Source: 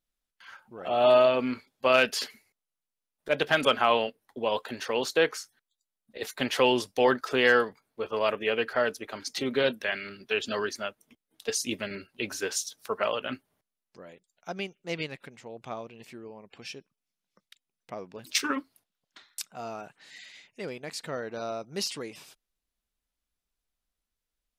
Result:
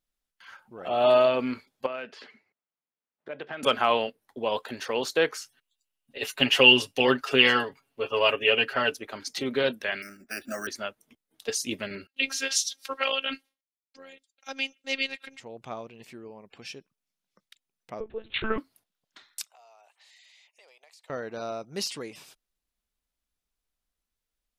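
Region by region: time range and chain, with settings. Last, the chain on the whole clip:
0:01.86–0:03.63: downward compressor 2.5 to 1, threshold −37 dBFS + band-pass filter 150–2,400 Hz
0:05.41–0:08.96: parametric band 2,800 Hz +13.5 dB 0.25 octaves + comb filter 7.3 ms, depth 74%
0:10.02–0:10.67: phaser with its sweep stopped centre 650 Hz, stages 8 + bad sample-rate conversion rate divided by 6×, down filtered, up hold
0:12.07–0:15.40: noise gate with hold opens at −55 dBFS, closes at −64 dBFS + meter weighting curve D + phases set to zero 269 Hz
0:18.00–0:18.58: parametric band 450 Hz +9.5 dB 0.69 octaves + one-pitch LPC vocoder at 8 kHz 220 Hz
0:19.44–0:21.10: high-pass filter 680 Hz 24 dB per octave + parametric band 1,500 Hz −12 dB 0.52 octaves + downward compressor, threshold −54 dBFS
whole clip: no processing

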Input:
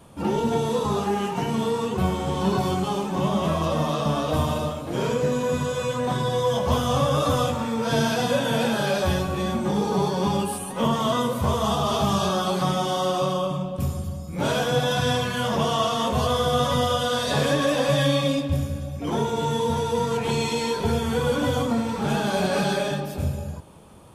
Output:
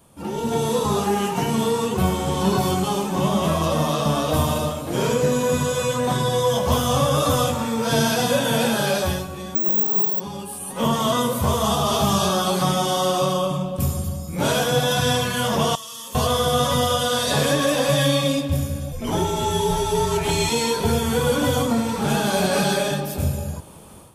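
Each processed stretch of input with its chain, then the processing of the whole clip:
0:09.55–0:10.20: high-pass filter 130 Hz 24 dB per octave + parametric band 310 Hz +8.5 dB 0.35 octaves + bad sample-rate conversion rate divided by 2×, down filtered, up zero stuff
0:15.75–0:16.15: first-order pre-emphasis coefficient 0.9 + notch comb filter 720 Hz + downward compressor, threshold −37 dBFS
0:18.92–0:20.50: mains-hum notches 50/100/150/200/250/300/350/400/450 Hz + frequency shifter −54 Hz
whole clip: high-shelf EQ 7,000 Hz +11.5 dB; automatic gain control gain up to 10.5 dB; level −6 dB

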